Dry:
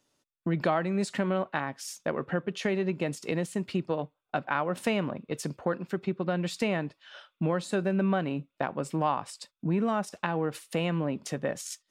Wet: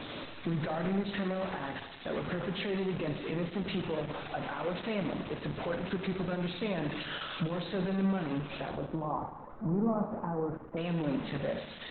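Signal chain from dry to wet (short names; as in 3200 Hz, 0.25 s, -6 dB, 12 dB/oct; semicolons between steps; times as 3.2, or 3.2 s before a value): zero-crossing step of -26.5 dBFS; 8.7–10.77 inverse Chebyshev low-pass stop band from 6300 Hz, stop band 80 dB; limiter -19 dBFS, peak gain reduction 7.5 dB; Schroeder reverb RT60 1.2 s, combs from 27 ms, DRR 5 dB; gain -5.5 dB; Opus 8 kbps 48000 Hz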